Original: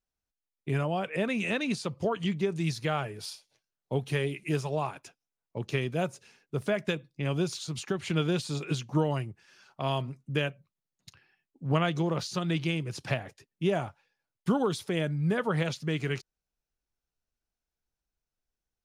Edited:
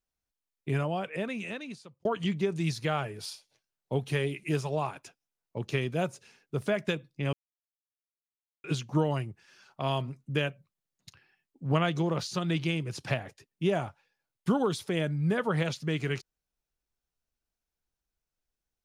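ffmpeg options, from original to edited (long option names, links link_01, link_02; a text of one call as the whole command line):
ffmpeg -i in.wav -filter_complex "[0:a]asplit=4[link_01][link_02][link_03][link_04];[link_01]atrim=end=2.05,asetpts=PTS-STARTPTS,afade=type=out:start_time=0.74:duration=1.31[link_05];[link_02]atrim=start=2.05:end=7.33,asetpts=PTS-STARTPTS,afade=type=in:duration=0.004:curve=hsin,afade=type=out:start_time=5.276:duration=0.004:curve=hsin[link_06];[link_03]atrim=start=7.33:end=8.64,asetpts=PTS-STARTPTS,volume=0[link_07];[link_04]atrim=start=8.64,asetpts=PTS-STARTPTS,afade=type=in:duration=0.004:curve=hsin[link_08];[link_05][link_06][link_07][link_08]concat=n=4:v=0:a=1" out.wav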